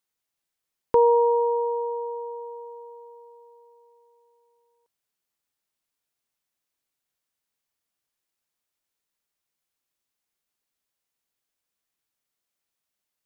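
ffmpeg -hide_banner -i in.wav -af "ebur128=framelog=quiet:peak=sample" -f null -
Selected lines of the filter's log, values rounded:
Integrated loudness:
  I:         -23.1 LUFS
  Threshold: -36.8 LUFS
Loudness range:
  LRA:        20.8 LU
  Threshold: -50.6 LUFS
  LRA low:   -46.4 LUFS
  LRA high:  -25.6 LUFS
Sample peak:
  Peak:      -10.7 dBFS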